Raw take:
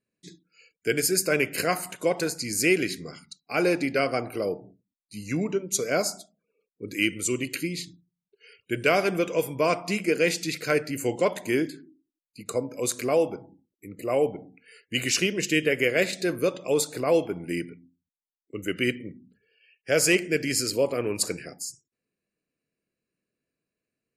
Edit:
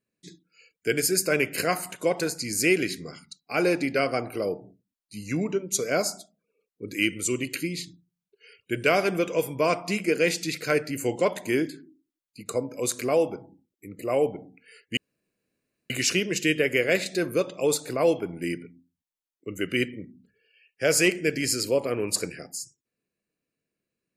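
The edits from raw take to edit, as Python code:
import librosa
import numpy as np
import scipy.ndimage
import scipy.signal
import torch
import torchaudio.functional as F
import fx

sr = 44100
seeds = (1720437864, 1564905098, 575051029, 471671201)

y = fx.edit(x, sr, fx.insert_room_tone(at_s=14.97, length_s=0.93), tone=tone)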